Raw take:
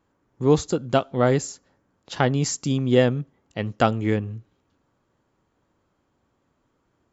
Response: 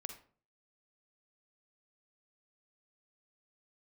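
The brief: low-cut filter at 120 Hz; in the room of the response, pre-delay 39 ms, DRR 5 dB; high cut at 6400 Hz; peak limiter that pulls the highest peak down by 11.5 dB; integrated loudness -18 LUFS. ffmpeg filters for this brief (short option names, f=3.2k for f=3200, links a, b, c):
-filter_complex "[0:a]highpass=120,lowpass=6.4k,alimiter=limit=-13.5dB:level=0:latency=1,asplit=2[a][b];[1:a]atrim=start_sample=2205,adelay=39[c];[b][c]afir=irnorm=-1:irlink=0,volume=-2dB[d];[a][d]amix=inputs=2:normalize=0,volume=8.5dB"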